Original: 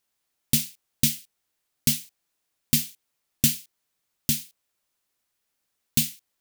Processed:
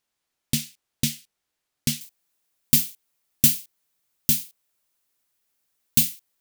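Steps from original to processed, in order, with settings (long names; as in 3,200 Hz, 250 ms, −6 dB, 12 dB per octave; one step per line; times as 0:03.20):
high-shelf EQ 9,300 Hz −7.5 dB, from 0:02.01 +6.5 dB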